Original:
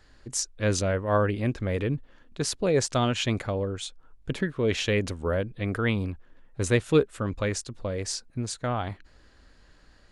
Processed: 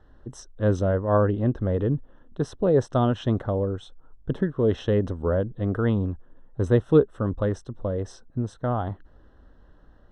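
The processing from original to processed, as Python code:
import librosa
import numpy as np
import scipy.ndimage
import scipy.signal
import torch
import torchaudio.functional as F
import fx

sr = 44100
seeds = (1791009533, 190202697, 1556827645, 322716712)

y = np.convolve(x, np.full(19, 1.0 / 19))[:len(x)]
y = y * librosa.db_to_amplitude(4.0)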